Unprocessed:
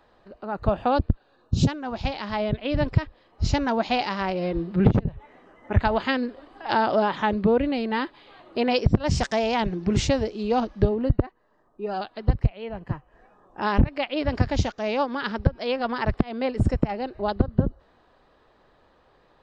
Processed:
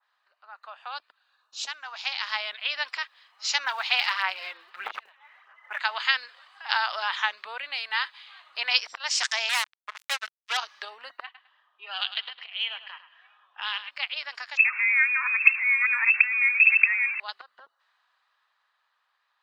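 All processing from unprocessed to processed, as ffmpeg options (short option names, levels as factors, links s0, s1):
-filter_complex "[0:a]asettb=1/sr,asplit=3[s0][s1][s2];[s0]atrim=end=3.644[s3];[s1]atrim=start=3.64:end=5.8,asetpts=PTS-STARTPTS,afade=t=in:d=0.004:c=qsin,afade=t=out:st=2.156:d=0.004:c=qsin,lowpass=3700,aphaser=in_gain=1:out_gain=1:delay=3.8:decay=0.41:speed=1.6:type=sinusoidal[s4];[s2]atrim=start=5.796[s5];[s3][s4]acrossfade=d=0.004:c1=hsin:c2=qsin[s6];[s6][s5]acrossfade=d=0.004:c1=qsin:c2=hsin,asettb=1/sr,asplit=3[s7][s8][s9];[s7]atrim=end=9.494[s10];[s8]atrim=start=9.49:end=10.57,asetpts=PTS-STARTPTS,afade=t=in:d=0.004:c=qsin,afade=t=out:st=1.076:d=0.004:c=qsin,highpass=410,lowpass=2300,acrusher=bits=3:mix=0:aa=0.5[s11];[s9]atrim=start=10.566[s12];[s10][s11]acrossfade=d=0.004:c1=hsin:c2=qsin[s13];[s13][s12]acrossfade=d=0.004:c1=qsin:c2=hsin,asettb=1/sr,asplit=3[s14][s15][s16];[s14]atrim=end=11.244[s17];[s15]atrim=start=11.24:end=13.91,asetpts=PTS-STARTPTS,afade=t=in:d=0.004:c=qsin,afade=t=out:st=2.666:d=0.004:c=qsin,lowpass=f=3200:t=q:w=6.8,acompressor=threshold=0.0398:ratio=2.5:attack=3.2:release=140:knee=1:detection=peak,aecho=1:1:104|208|312:0.266|0.0718|0.0194,atrim=end_sample=117747[s18];[s16]atrim=start=13.906[s19];[s17][s18]acrossfade=d=0.004:c1=hsin:c2=qsin[s20];[s20][s19]acrossfade=d=0.004:c1=qsin:c2=hsin,asettb=1/sr,asplit=3[s21][s22][s23];[s21]atrim=end=14.574[s24];[s22]atrim=start=14.57:end=17.2,asetpts=PTS-STARTPTS,afade=t=in:d=0.004:c=qsin,afade=t=out:st=2.626:d=0.004:c=qsin,aeval=exprs='val(0)+0.5*0.0398*sgn(val(0))':c=same,lowpass=f=2300:t=q:w=0.5098,lowpass=f=2300:t=q:w=0.6013,lowpass=f=2300:t=q:w=0.9,lowpass=f=2300:t=q:w=2.563,afreqshift=-2700[s25];[s23]atrim=start=17.196[s26];[s24][s25]acrossfade=d=0.004:c1=hsin:c2=qsin[s27];[s27][s26]acrossfade=d=0.004:c1=qsin:c2=hsin,highpass=f=1100:w=0.5412,highpass=f=1100:w=1.3066,dynaudnorm=f=310:g=11:m=3.55,adynamicequalizer=threshold=0.02:dfrequency=1800:dqfactor=0.7:tfrequency=1800:tqfactor=0.7:attack=5:release=100:ratio=0.375:range=3.5:mode=boostabove:tftype=highshelf,volume=0.422"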